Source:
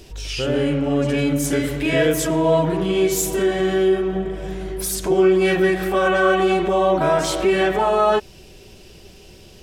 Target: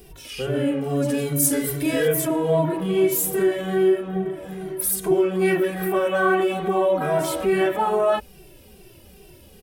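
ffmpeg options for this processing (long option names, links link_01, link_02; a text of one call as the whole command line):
ffmpeg -i in.wav -filter_complex "[0:a]asettb=1/sr,asplit=3[link_01][link_02][link_03];[link_01]atrim=end=0.814[link_04];[link_02]atrim=start=0.81:end=2.08,asetpts=PTS-STARTPTS,afade=type=in:duration=0.004:curve=qsin,afade=type=out:start_time=1.266:duration=0.004:curve=qsin,highshelf=frequency=3600:width_type=q:width=1.5:gain=7.5[link_05];[link_03]atrim=start=2.076[link_06];[link_04][link_05]acrossfade=duration=0.004:curve1=hsin:curve2=qsin[link_07];[link_07][link_06]acrossfade=duration=0.004:curve1=qsin:curve2=hsin,aexciter=amount=3:drive=6.3:freq=9100,equalizer=frequency=5200:width=0.71:gain=-6.5,bandreject=frequency=50:width_type=h:width=6,bandreject=frequency=100:width_type=h:width=6,asplit=2[link_08][link_09];[link_09]adelay=2.1,afreqshift=-2.4[link_10];[link_08][link_10]amix=inputs=2:normalize=1" out.wav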